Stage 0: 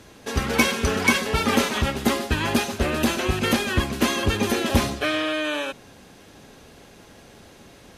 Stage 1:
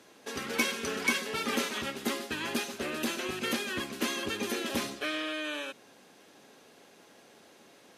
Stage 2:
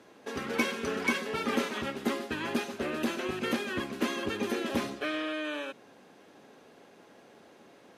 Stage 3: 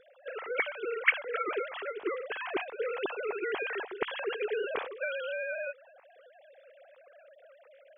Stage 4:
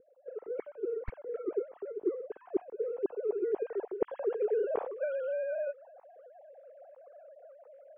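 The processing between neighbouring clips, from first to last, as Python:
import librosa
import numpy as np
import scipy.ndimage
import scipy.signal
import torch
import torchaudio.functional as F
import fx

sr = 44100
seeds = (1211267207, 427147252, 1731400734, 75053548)

y1 = fx.dynamic_eq(x, sr, hz=780.0, q=1.2, threshold_db=-37.0, ratio=4.0, max_db=-6)
y1 = scipy.signal.sosfilt(scipy.signal.butter(2, 260.0, 'highpass', fs=sr, output='sos'), y1)
y1 = y1 * librosa.db_to_amplitude(-7.5)
y2 = fx.high_shelf(y1, sr, hz=2800.0, db=-11.5)
y2 = y2 * librosa.db_to_amplitude(3.0)
y3 = fx.sine_speech(y2, sr)
y3 = fx.rider(y3, sr, range_db=3, speed_s=2.0)
y3 = y3 * librosa.db_to_amplitude(-2.5)
y4 = np.minimum(y3, 2.0 * 10.0 ** (-18.5 / 20.0) - y3)
y4 = fx.filter_sweep_lowpass(y4, sr, from_hz=370.0, to_hz=760.0, start_s=2.99, end_s=5.02, q=1.5)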